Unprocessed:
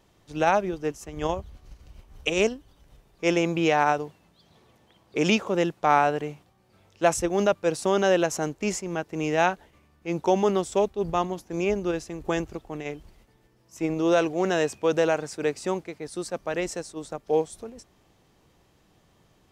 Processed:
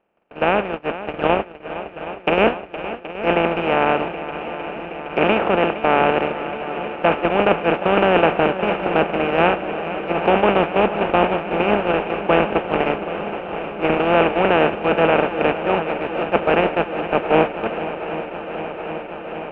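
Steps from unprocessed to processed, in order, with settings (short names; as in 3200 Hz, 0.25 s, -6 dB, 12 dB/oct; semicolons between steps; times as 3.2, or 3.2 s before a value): per-bin compression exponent 0.2; Chebyshev low-pass 2800 Hz, order 4; gate -14 dBFS, range -49 dB; AGC; on a send: swung echo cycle 0.773 s, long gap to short 1.5:1, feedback 79%, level -13.5 dB; on the sum: gain -1 dB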